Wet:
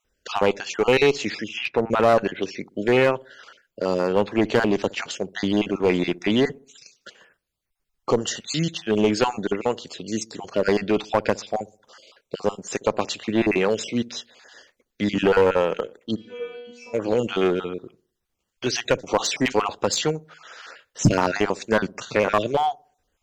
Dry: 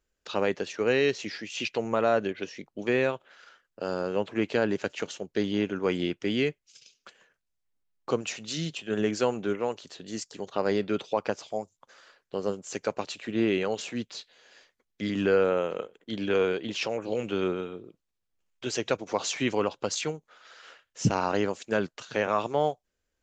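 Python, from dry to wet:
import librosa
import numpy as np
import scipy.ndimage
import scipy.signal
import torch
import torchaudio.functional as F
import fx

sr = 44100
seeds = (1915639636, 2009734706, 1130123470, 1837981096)

p1 = fx.spec_dropout(x, sr, seeds[0], share_pct=29)
p2 = fx.lowpass(p1, sr, hz=fx.line((1.48, 3200.0), (1.89, 1600.0)), slope=12, at=(1.48, 1.89), fade=0.02)
p3 = fx.stiff_resonator(p2, sr, f0_hz=240.0, decay_s=0.79, stiffness=0.002, at=(16.15, 16.93), fade=0.02)
p4 = fx.clip_asym(p3, sr, top_db=-24.5, bottom_db=-14.5)
p5 = p4 + fx.echo_wet_lowpass(p4, sr, ms=63, feedback_pct=42, hz=520.0, wet_db=-19, dry=0)
y = p5 * librosa.db_to_amplitude(9.0)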